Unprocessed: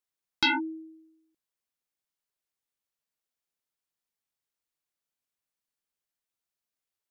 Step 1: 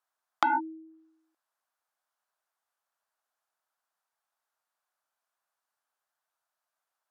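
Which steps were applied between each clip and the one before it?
high-pass filter 380 Hz
treble cut that deepens with the level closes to 640 Hz, closed at −35.5 dBFS
flat-topped bell 1,000 Hz +13 dB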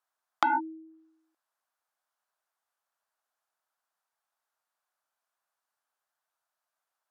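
no processing that can be heard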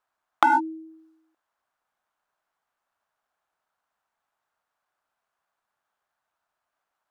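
running median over 9 samples
level +7 dB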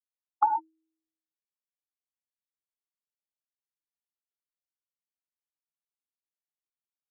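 expanding power law on the bin magnitudes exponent 2.6
phaser with its sweep stopped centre 370 Hz, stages 8
expander for the loud parts 2.5 to 1, over −38 dBFS
level −1.5 dB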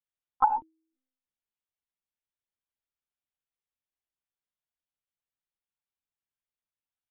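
one-pitch LPC vocoder at 8 kHz 260 Hz

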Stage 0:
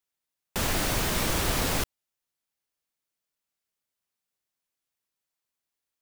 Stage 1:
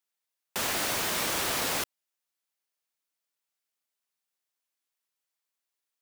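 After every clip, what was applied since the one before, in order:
high-pass filter 520 Hz 6 dB per octave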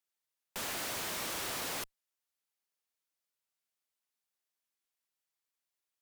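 tube saturation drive 33 dB, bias 0.4
level −2 dB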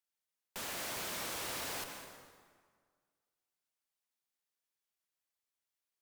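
convolution reverb RT60 1.7 s, pre-delay 109 ms, DRR 5 dB
level −3.5 dB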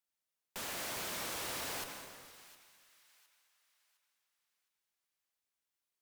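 delay with a high-pass on its return 711 ms, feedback 35%, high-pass 1,400 Hz, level −17 dB

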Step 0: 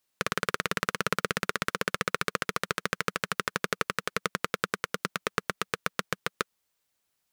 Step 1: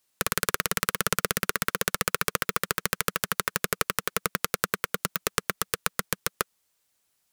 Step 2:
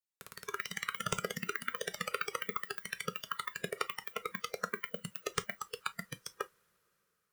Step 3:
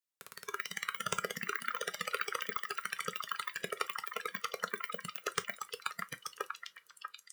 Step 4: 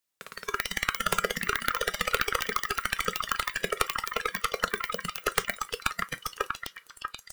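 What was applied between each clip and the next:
parametric band 9,400 Hz +4 dB 1.6 octaves; wrap-around overflow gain 6 dB; level +3 dB
automatic gain control; coupled-rooms reverb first 0.25 s, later 4.5 s, from −21 dB, DRR 9.5 dB; noise reduction from a noise print of the clip's start 16 dB; level −8.5 dB
low-shelf EQ 200 Hz −10 dB; echo through a band-pass that steps 641 ms, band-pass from 1,400 Hz, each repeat 1.4 octaves, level −3 dB
stylus tracing distortion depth 0.44 ms; level +9 dB

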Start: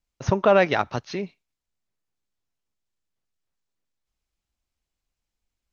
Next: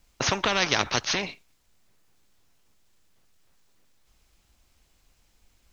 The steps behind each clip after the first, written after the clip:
every bin compressed towards the loudest bin 4 to 1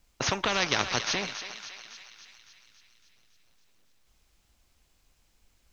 feedback echo with a high-pass in the loop 279 ms, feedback 62%, high-pass 790 Hz, level −9.5 dB
feedback echo with a swinging delay time 350 ms, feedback 34%, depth 171 cents, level −23 dB
level −3 dB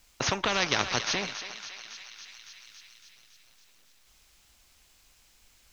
one half of a high-frequency compander encoder only

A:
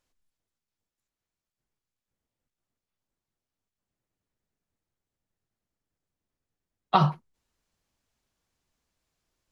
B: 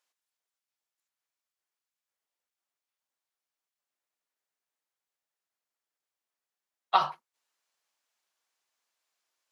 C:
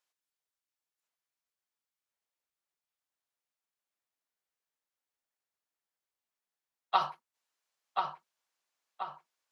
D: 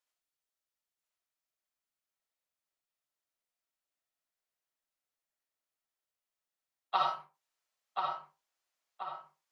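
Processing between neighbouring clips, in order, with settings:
high-pass filter 750 Hz 12 dB per octave
feedback echo with a low-pass in the loop 1,032 ms, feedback 47%, low-pass 3,100 Hz, level −4 dB; level −4 dB
convolution reverb, pre-delay 25 ms, DRR 0.5 dB; level −4 dB

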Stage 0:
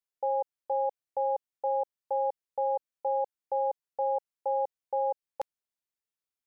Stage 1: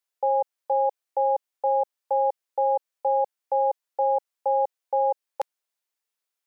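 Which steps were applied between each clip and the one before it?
high-pass filter 430 Hz 12 dB per octave
level +7 dB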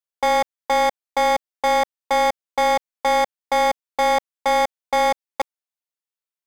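leveller curve on the samples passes 5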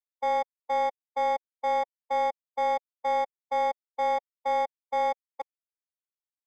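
every bin expanded away from the loudest bin 1.5 to 1
level −5.5 dB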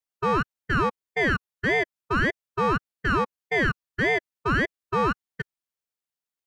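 ring modulator whose carrier an LFO sweeps 800 Hz, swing 60%, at 1.7 Hz
level +6 dB

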